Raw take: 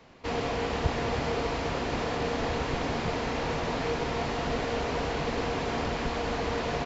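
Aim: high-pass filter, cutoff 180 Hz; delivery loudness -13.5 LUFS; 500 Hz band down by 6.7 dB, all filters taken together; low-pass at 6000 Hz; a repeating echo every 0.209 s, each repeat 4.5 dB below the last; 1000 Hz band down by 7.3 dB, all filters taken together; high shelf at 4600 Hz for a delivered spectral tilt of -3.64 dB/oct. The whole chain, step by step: HPF 180 Hz; LPF 6000 Hz; bell 500 Hz -6 dB; bell 1000 Hz -7 dB; high shelf 4600 Hz -8 dB; feedback echo 0.209 s, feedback 60%, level -4.5 dB; gain +20 dB

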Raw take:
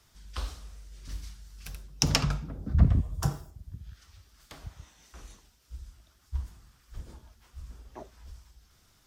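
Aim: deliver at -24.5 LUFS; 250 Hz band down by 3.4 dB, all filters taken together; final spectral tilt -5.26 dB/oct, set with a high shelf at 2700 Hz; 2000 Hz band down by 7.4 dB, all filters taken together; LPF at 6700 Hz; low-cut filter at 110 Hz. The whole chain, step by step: HPF 110 Hz; LPF 6700 Hz; bell 250 Hz -4.5 dB; bell 2000 Hz -7 dB; high shelf 2700 Hz -6 dB; gain +10.5 dB

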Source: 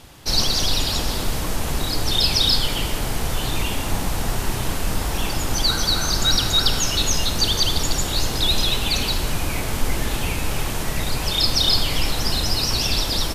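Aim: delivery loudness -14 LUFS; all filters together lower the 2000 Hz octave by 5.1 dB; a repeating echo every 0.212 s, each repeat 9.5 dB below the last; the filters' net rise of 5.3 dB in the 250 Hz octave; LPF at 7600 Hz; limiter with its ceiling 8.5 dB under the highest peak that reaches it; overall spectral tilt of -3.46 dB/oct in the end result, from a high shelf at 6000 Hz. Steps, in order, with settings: LPF 7600 Hz; bell 250 Hz +7 dB; bell 2000 Hz -8 dB; high shelf 6000 Hz +5.5 dB; limiter -13 dBFS; feedback echo 0.212 s, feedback 33%, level -9.5 dB; gain +9 dB

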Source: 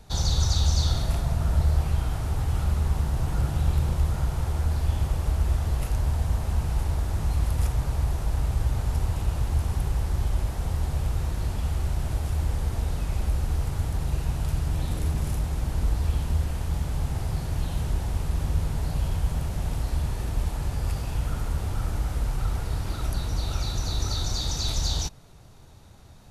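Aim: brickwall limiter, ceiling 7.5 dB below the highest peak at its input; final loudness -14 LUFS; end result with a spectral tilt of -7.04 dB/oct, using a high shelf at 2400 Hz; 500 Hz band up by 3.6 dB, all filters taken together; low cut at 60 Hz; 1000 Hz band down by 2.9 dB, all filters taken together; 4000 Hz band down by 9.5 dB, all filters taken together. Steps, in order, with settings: HPF 60 Hz; bell 500 Hz +6.5 dB; bell 1000 Hz -5 dB; high shelf 2400 Hz -8.5 dB; bell 4000 Hz -3.5 dB; gain +16.5 dB; limiter -3.5 dBFS

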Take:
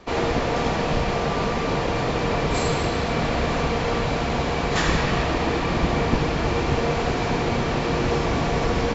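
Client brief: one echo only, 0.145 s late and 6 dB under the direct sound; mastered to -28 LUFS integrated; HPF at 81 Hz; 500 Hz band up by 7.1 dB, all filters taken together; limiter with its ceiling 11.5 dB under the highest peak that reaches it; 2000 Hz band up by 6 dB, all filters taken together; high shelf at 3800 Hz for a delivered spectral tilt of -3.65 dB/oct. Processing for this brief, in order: HPF 81 Hz; bell 500 Hz +8 dB; bell 2000 Hz +6 dB; high shelf 3800 Hz +3.5 dB; limiter -15 dBFS; echo 0.145 s -6 dB; gain -5.5 dB

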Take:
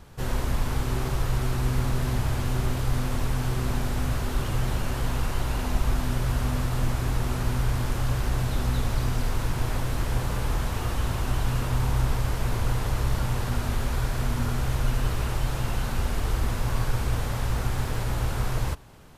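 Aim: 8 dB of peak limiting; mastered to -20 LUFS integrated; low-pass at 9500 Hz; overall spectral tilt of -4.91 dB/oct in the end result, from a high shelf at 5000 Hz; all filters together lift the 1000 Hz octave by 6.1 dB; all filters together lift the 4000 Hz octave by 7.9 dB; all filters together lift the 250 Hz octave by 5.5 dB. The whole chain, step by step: LPF 9500 Hz; bell 250 Hz +6.5 dB; bell 1000 Hz +6.5 dB; bell 4000 Hz +7 dB; high shelf 5000 Hz +6 dB; gain +8 dB; limiter -9 dBFS

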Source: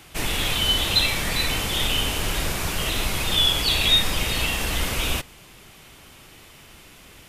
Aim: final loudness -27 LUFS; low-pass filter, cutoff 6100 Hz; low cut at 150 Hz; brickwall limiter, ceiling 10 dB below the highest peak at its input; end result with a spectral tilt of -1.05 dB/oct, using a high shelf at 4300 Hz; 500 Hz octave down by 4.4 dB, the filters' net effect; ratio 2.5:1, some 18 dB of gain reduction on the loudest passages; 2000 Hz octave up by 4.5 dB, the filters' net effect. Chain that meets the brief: HPF 150 Hz; LPF 6100 Hz; bell 500 Hz -6 dB; bell 2000 Hz +4.5 dB; high shelf 4300 Hz +6 dB; compressor 2.5:1, threshold -41 dBFS; gain +12.5 dB; limiter -20 dBFS

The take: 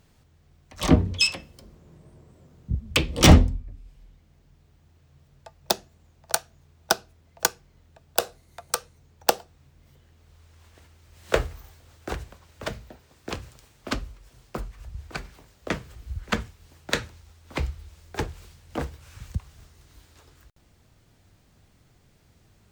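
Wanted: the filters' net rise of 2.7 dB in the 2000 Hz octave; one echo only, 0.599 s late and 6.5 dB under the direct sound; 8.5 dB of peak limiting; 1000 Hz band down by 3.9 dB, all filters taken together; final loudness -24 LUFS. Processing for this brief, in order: bell 1000 Hz -7 dB; bell 2000 Hz +5.5 dB; limiter -9 dBFS; echo 0.599 s -6.5 dB; gain +5.5 dB

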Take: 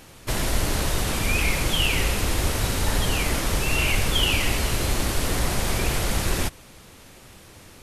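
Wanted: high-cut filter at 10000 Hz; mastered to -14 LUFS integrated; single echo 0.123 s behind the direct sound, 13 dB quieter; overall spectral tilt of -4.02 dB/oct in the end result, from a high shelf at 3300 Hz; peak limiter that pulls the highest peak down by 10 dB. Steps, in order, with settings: LPF 10000 Hz; high shelf 3300 Hz -4.5 dB; limiter -19.5 dBFS; echo 0.123 s -13 dB; gain +15.5 dB

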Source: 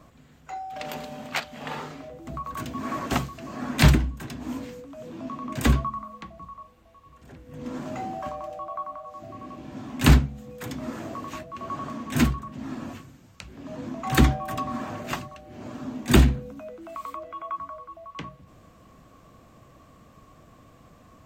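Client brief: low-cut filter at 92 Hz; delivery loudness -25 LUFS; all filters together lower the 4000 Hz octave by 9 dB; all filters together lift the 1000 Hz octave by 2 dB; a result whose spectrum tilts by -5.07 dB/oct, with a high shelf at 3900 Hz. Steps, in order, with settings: HPF 92 Hz; bell 1000 Hz +3.5 dB; high shelf 3900 Hz -9 dB; bell 4000 Hz -7 dB; gain +4.5 dB

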